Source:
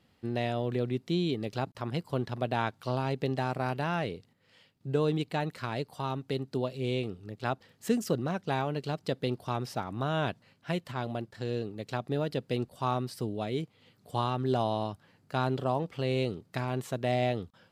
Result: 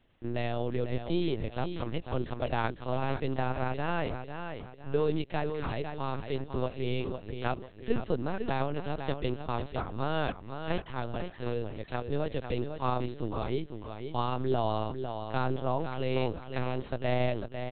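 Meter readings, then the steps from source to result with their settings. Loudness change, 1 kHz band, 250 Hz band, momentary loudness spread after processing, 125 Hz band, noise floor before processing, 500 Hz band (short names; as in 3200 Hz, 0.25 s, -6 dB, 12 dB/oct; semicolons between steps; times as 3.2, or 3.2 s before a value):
-1.0 dB, -0.5 dB, -1.5 dB, 6 LU, -1.5 dB, -67 dBFS, 0.0 dB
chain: HPF 54 Hz 12 dB/oct; feedback echo 0.502 s, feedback 36%, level -7.5 dB; LPC vocoder at 8 kHz pitch kept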